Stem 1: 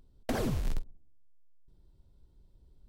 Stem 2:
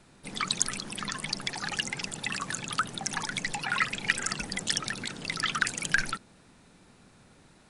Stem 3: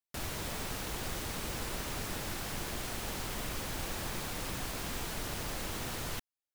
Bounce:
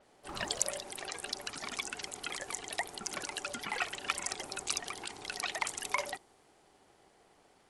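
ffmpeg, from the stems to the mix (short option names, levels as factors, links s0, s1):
-filter_complex "[0:a]equalizer=f=670:w=0.32:g=13.5,volume=0.188[s0];[1:a]volume=0.596[s1];[s0]alimiter=level_in=2.37:limit=0.0631:level=0:latency=1:release=234,volume=0.422,volume=1[s2];[s1][s2]amix=inputs=2:normalize=0,aeval=exprs='val(0)*sin(2*PI*580*n/s)':c=same,adynamicequalizer=threshold=0.00316:dfrequency=6400:dqfactor=0.7:tfrequency=6400:tqfactor=0.7:attack=5:release=100:ratio=0.375:range=2.5:mode=boostabove:tftype=highshelf"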